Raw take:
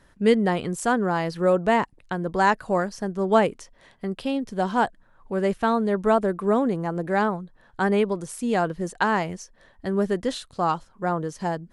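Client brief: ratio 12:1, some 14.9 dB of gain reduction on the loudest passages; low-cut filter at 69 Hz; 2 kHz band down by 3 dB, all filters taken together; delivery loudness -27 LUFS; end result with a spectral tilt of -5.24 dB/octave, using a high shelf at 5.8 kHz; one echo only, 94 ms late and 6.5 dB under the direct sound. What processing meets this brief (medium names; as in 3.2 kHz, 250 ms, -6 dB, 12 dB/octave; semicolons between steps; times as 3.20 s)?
high-pass 69 Hz; peaking EQ 2 kHz -4.5 dB; treble shelf 5.8 kHz +4.5 dB; compression 12:1, threshold -28 dBFS; delay 94 ms -6.5 dB; trim +6 dB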